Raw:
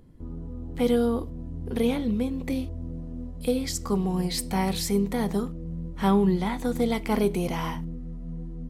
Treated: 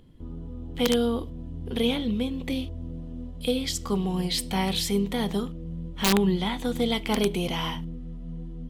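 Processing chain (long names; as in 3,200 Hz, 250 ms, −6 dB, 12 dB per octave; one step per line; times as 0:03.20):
parametric band 3,200 Hz +12.5 dB 0.6 octaves
wrap-around overflow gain 12 dB
level −1 dB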